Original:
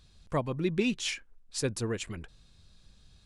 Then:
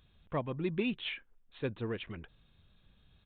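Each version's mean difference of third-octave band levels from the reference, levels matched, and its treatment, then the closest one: 4.5 dB: bass shelf 66 Hz -6.5 dB; in parallel at -8 dB: saturation -32 dBFS, distortion -8 dB; on the sum: resampled via 8 kHz; trim -5.5 dB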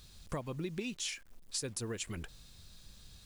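8.0 dB: treble shelf 4.8 kHz +9.5 dB; compression 12:1, threshold -37 dBFS, peak gain reduction 15 dB; bit crusher 11-bit; trim +2 dB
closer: first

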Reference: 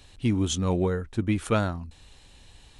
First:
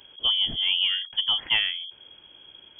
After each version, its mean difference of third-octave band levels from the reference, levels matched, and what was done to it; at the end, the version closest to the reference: 13.0 dB: frequency inversion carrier 3.3 kHz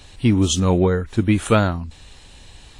1.0 dB: trim +8 dB; WMA 32 kbps 32 kHz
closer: second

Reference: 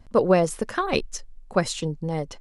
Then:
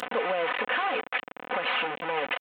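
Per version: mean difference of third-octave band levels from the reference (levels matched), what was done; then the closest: 13.5 dB: one-bit delta coder 16 kbps, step -16.5 dBFS; high-pass 550 Hz 12 dB/octave; comb 4 ms, depth 69%; peak limiter -16 dBFS, peak gain reduction 10 dB; trim -2.5 dB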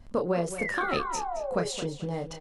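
6.5 dB: compression 2:1, threshold -30 dBFS, peak gain reduction 9.5 dB; painted sound fall, 0.58–1.68 s, 400–2300 Hz -33 dBFS; doubling 29 ms -6.5 dB; on a send: tape echo 218 ms, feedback 30%, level -10.5 dB, low-pass 5.6 kHz; on the sum: trim -1 dB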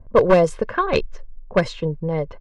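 4.0 dB: one-sided wavefolder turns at -15 dBFS; low-pass 3.2 kHz 6 dB/octave; level-controlled noise filter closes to 790 Hz, open at -16 dBFS; comb 1.9 ms, depth 44%; trim +4 dB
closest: third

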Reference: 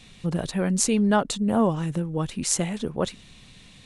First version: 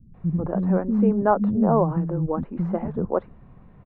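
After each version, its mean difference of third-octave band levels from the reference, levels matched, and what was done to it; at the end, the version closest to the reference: 10.5 dB: low-pass 1.2 kHz 24 dB/octave; bands offset in time lows, highs 140 ms, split 260 Hz; trim +4.5 dB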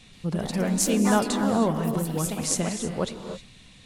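7.0 dB: ever faster or slower copies 128 ms, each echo +3 st, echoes 3, each echo -6 dB; gated-style reverb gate 340 ms rising, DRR 7.5 dB; trim -2 dB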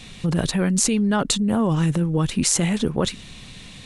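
3.0 dB: dynamic bell 660 Hz, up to -6 dB, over -36 dBFS, Q 1.1; in parallel at +1.5 dB: compressor with a negative ratio -27 dBFS, ratio -0.5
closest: third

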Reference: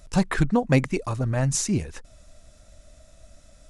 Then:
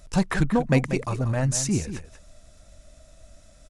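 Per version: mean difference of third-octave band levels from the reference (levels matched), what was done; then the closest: 3.0 dB: in parallel at -12 dB: hard clipper -20 dBFS, distortion -9 dB; on the sum: delay 187 ms -11 dB; trim -2 dB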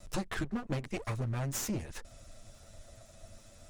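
7.0 dB: comb filter that takes the minimum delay 9 ms; compression 16:1, threshold -31 dBFS, peak gain reduction 17 dB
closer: first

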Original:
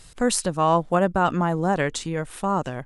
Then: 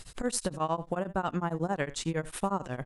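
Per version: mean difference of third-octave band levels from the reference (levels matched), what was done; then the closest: 4.5 dB: compression 5:1, threshold -27 dBFS, peak gain reduction 12 dB; delay 76 ms -18.5 dB; tremolo of two beating tones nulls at 11 Hz; trim +2 dB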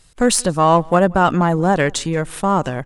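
2.0 dB: gate -40 dBFS, range -12 dB; in parallel at -8 dB: saturation -23.5 dBFS, distortion -7 dB; on the sum: echo from a far wall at 30 m, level -27 dB; trim +5 dB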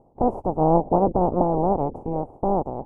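12.5 dB: spectral peaks clipped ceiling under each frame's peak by 28 dB; elliptic low-pass 840 Hz, stop band 50 dB; gate -46 dBFS, range -6 dB; trim +6.5 dB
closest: second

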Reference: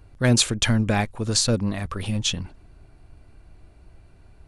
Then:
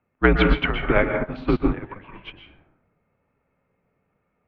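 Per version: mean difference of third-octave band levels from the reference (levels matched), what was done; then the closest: 10.5 dB: plate-style reverb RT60 0.96 s, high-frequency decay 0.4×, pre-delay 110 ms, DRR 0.5 dB; mistuned SSB -190 Hz 270–2800 Hz; upward expansion 2.5:1, over -34 dBFS; trim +9 dB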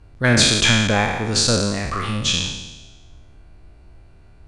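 7.5 dB: spectral sustain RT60 1.19 s; low-pass 8.2 kHz 12 dB/octave; dynamic bell 1.4 kHz, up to +5 dB, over -33 dBFS, Q 0.79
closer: second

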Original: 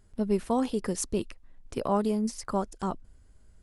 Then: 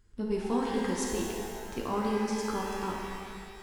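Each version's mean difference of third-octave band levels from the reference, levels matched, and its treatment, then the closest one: 11.0 dB: fifteen-band graphic EQ 160 Hz -8 dB, 630 Hz -12 dB, 10 kHz -8 dB; pitch-shifted reverb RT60 2.2 s, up +12 st, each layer -8 dB, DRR -2 dB; trim -2 dB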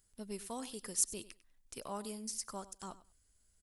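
6.5 dB: pre-emphasis filter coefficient 0.9; feedback delay 98 ms, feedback 16%, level -17 dB; trim +1.5 dB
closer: second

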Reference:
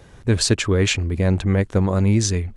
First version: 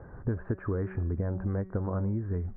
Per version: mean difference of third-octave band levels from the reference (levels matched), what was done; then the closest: 7.0 dB: steep low-pass 1.6 kHz 48 dB/octave; de-hum 188.6 Hz, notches 37; compression 12:1, threshold -27 dBFS, peak gain reduction 15.5 dB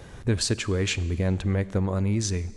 2.5 dB: compression 1.5:1, threshold -34 dBFS, peak gain reduction 8 dB; Schroeder reverb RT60 1.7 s, combs from 32 ms, DRR 18 dB; gain riding 0.5 s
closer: second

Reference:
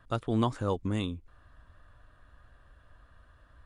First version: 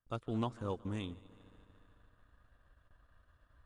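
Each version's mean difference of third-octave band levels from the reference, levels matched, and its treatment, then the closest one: 3.0 dB: multi-head delay 74 ms, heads second and third, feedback 63%, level -19 dB; gate with hold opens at -49 dBFS; transient shaper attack 0 dB, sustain -5 dB; loudspeaker Doppler distortion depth 0.14 ms; trim -8.5 dB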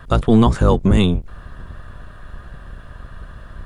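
4.0 dB: octave divider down 1 oct, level +3 dB; peaking EQ 290 Hz -8 dB 0.21 oct; in parallel at -0.5 dB: compression, threshold -35 dBFS, peak gain reduction 13.5 dB; on the sum: loudness maximiser +16 dB; trim -3 dB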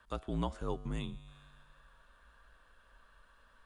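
7.0 dB: feedback comb 100 Hz, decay 1.7 s, harmonics all, mix 60%; frequency shift -56 Hz; tape noise reduction on one side only encoder only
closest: first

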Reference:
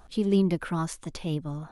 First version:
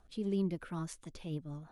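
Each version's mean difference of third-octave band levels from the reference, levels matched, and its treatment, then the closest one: 1.5 dB: rotary cabinet horn 6.3 Hz; trim -8.5 dB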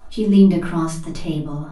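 4.5 dB: simulated room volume 190 m³, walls furnished, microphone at 3 m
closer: first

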